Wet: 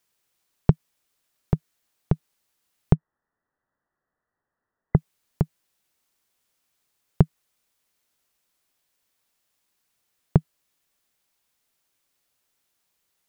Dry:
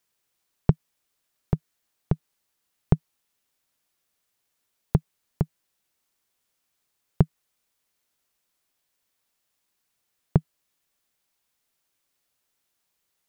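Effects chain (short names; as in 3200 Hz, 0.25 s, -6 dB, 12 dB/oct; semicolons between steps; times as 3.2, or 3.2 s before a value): 2.94–4.96 brick-wall FIR low-pass 2000 Hz; gain +2 dB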